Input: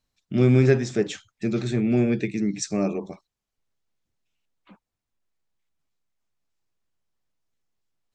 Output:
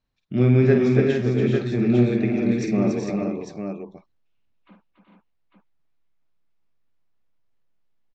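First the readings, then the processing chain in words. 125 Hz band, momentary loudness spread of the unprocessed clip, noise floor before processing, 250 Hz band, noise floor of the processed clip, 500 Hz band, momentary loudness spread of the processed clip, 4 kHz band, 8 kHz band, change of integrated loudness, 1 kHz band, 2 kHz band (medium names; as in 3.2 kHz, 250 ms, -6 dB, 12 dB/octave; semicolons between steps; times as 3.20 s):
+3.0 dB, 12 LU, under -85 dBFS, +3.5 dB, -69 dBFS, +3.5 dB, 14 LU, -2.5 dB, -9.0 dB, +2.5 dB, +3.0 dB, +2.0 dB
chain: distance through air 190 m; multi-tap echo 49/284/376/405/448/850 ms -7/-6.5/-8/-5.5/-6/-6 dB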